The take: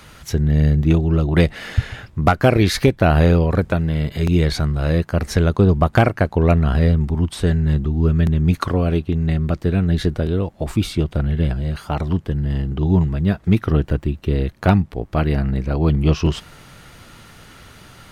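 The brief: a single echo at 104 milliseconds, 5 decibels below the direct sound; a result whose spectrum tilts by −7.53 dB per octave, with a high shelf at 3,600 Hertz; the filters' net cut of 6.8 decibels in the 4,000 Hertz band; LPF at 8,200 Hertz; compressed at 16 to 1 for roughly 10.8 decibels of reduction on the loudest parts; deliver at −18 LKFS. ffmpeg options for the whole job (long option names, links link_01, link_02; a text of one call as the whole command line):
ffmpeg -i in.wav -af "lowpass=8200,highshelf=frequency=3600:gain=-4.5,equalizer=frequency=4000:width_type=o:gain=-5.5,acompressor=threshold=-20dB:ratio=16,aecho=1:1:104:0.562,volume=7dB" out.wav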